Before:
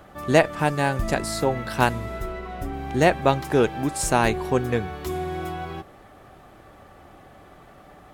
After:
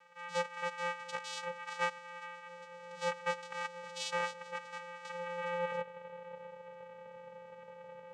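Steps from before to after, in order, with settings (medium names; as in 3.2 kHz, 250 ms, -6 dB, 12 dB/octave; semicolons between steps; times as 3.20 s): high-pass sweep 1.7 kHz -> 420 Hz, 4.75–6.95 s; static phaser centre 830 Hz, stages 4; vocoder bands 4, square 174 Hz; trim -4 dB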